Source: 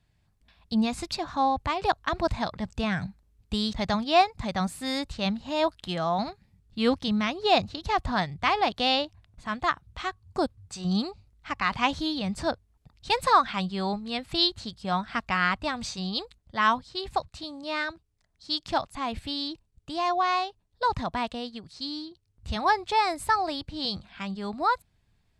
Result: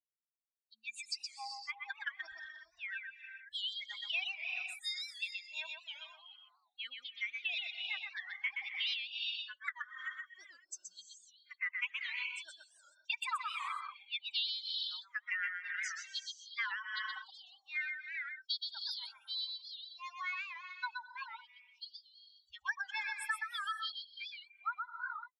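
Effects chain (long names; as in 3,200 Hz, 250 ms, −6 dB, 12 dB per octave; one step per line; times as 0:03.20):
spectral dynamics exaggerated over time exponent 3
inverse Chebyshev high-pass filter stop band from 530 Hz, stop band 60 dB
head-to-tape spacing loss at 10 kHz 20 dB
reverb whose tail is shaped and stops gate 450 ms rising, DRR 8 dB
downward compressor 5 to 1, threshold −51 dBFS, peak gain reduction 19.5 dB
reverb reduction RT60 0.68 s
on a send: single-tap delay 124 ms −4.5 dB
on the sum: wow of a warped record 78 rpm, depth 160 cents
level +15.5 dB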